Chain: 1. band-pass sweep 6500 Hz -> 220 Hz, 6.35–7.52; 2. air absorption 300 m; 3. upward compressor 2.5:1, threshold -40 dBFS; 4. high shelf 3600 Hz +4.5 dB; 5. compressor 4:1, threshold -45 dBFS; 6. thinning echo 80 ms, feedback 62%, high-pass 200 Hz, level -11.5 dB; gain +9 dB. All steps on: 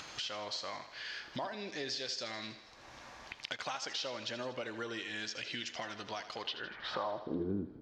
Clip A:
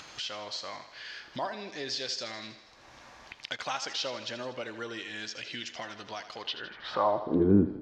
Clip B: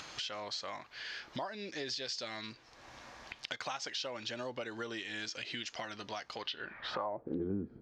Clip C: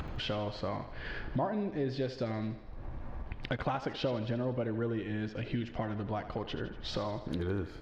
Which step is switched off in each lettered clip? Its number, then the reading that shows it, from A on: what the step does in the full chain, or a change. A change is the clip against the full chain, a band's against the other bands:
5, mean gain reduction 3.0 dB; 6, echo-to-direct -9.5 dB to none; 1, 125 Hz band +12.0 dB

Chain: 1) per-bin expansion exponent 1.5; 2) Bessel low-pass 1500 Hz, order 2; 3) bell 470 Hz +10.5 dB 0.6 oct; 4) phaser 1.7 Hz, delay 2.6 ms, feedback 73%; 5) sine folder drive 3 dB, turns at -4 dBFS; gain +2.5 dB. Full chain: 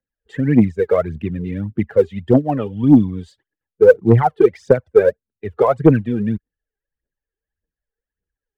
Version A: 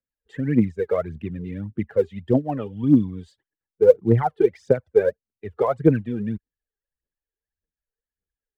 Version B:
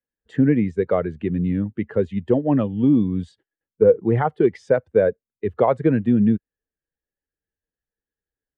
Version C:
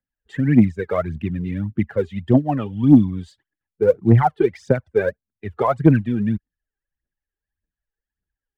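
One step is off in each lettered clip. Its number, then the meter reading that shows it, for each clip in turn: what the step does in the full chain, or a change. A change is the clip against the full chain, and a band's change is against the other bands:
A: 5, distortion -17 dB; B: 4, momentary loudness spread change -5 LU; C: 3, 500 Hz band -5.5 dB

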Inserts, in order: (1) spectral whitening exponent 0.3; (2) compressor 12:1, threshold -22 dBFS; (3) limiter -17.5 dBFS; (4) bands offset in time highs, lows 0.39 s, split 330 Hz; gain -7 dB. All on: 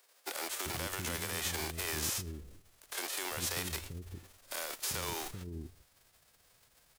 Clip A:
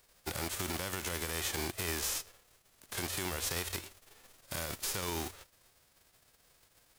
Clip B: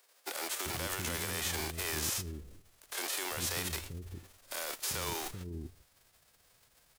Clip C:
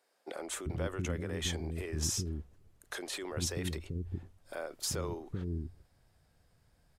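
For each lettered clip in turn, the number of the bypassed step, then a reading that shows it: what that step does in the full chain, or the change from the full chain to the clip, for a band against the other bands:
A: 4, echo-to-direct -21.5 dB to none; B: 2, mean gain reduction 4.0 dB; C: 1, 125 Hz band +8.5 dB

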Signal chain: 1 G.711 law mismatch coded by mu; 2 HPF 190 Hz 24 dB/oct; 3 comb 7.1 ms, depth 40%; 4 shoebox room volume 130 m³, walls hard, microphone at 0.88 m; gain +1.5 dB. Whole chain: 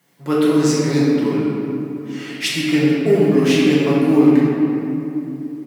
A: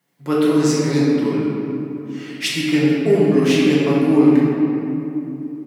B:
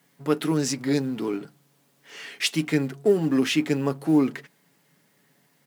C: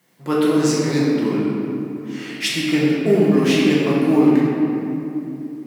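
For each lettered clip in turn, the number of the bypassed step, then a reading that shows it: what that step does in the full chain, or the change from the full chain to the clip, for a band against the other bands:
1, distortion -25 dB; 4, echo-to-direct 6.5 dB to none; 3, loudness change -1.5 LU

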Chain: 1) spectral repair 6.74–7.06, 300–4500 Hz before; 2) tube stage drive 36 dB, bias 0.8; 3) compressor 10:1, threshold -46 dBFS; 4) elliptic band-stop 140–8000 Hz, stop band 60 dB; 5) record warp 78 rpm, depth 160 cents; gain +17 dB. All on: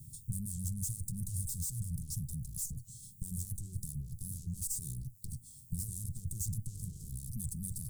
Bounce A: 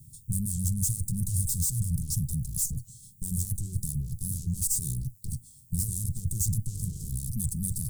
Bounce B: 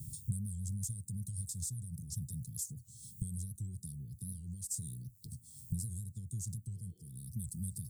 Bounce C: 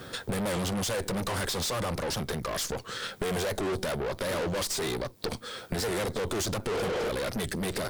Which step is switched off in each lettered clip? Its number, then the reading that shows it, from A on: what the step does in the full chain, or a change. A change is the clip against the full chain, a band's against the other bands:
3, mean gain reduction 8.0 dB; 2, 8 kHz band -1.5 dB; 4, 4 kHz band +20.0 dB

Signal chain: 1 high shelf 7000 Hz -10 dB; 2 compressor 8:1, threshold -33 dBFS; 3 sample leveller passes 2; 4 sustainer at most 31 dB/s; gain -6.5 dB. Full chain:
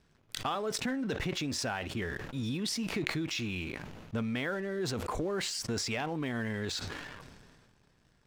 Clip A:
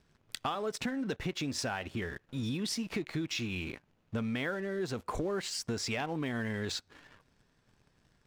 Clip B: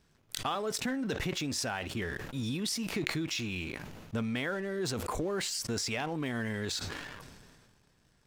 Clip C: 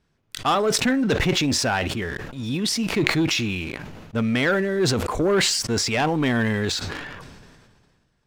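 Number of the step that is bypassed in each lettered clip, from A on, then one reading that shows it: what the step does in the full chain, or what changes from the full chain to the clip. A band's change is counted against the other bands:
4, crest factor change -5.5 dB; 1, 8 kHz band +2.0 dB; 2, mean gain reduction 11.0 dB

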